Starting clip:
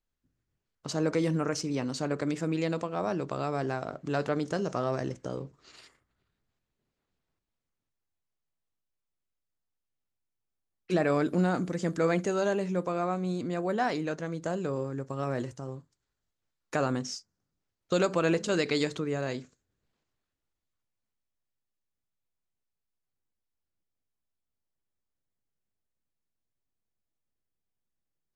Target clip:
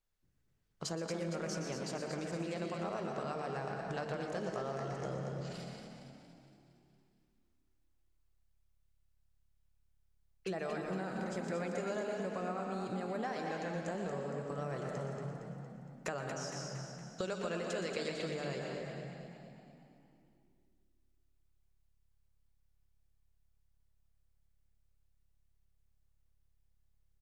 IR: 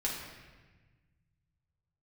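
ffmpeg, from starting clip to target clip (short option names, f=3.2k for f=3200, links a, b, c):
-filter_complex "[0:a]bandreject=f=48:t=h:w=4,bandreject=f=96:t=h:w=4,bandreject=f=144:t=h:w=4,bandreject=f=192:t=h:w=4,bandreject=f=240:t=h:w=4,bandreject=f=288:t=h:w=4,bandreject=f=336:t=h:w=4,asetrate=45938,aresample=44100,asplit=2[a][b];[1:a]atrim=start_sample=2205,adelay=118[c];[b][c]afir=irnorm=-1:irlink=0,volume=-8.5dB[d];[a][d]amix=inputs=2:normalize=0,acompressor=threshold=-36dB:ratio=6,equalizer=f=270:w=6.7:g=-14.5,asplit=2[e][f];[f]asplit=7[g][h][i][j][k][l][m];[g]adelay=231,afreqshift=35,volume=-7dB[n];[h]adelay=462,afreqshift=70,volume=-12.4dB[o];[i]adelay=693,afreqshift=105,volume=-17.7dB[p];[j]adelay=924,afreqshift=140,volume=-23.1dB[q];[k]adelay=1155,afreqshift=175,volume=-28.4dB[r];[l]adelay=1386,afreqshift=210,volume=-33.8dB[s];[m]adelay=1617,afreqshift=245,volume=-39.1dB[t];[n][o][p][q][r][s][t]amix=inputs=7:normalize=0[u];[e][u]amix=inputs=2:normalize=0"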